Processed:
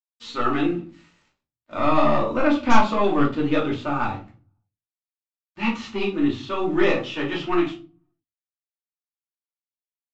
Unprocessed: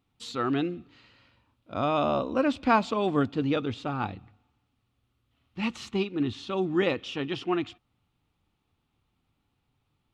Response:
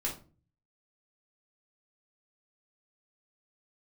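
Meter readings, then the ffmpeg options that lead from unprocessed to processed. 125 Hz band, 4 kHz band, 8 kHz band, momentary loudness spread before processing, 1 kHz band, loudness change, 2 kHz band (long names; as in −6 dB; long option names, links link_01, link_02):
+3.0 dB, +3.5 dB, can't be measured, 11 LU, +6.5 dB, +5.5 dB, +7.0 dB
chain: -filter_complex "[0:a]equalizer=frequency=1300:width_type=o:width=2.7:gain=9,aeval=exprs='0.794*(cos(1*acos(clip(val(0)/0.794,-1,1)))-cos(1*PI/2))+0.112*(cos(4*acos(clip(val(0)/0.794,-1,1)))-cos(4*PI/2))+0.158*(cos(5*acos(clip(val(0)/0.794,-1,1)))-cos(5*PI/2))':channel_layout=same,aresample=16000,aeval=exprs='sgn(val(0))*max(abs(val(0))-0.00447,0)':channel_layout=same,aresample=44100[link_01];[1:a]atrim=start_sample=2205[link_02];[link_01][link_02]afir=irnorm=-1:irlink=0,volume=-8.5dB"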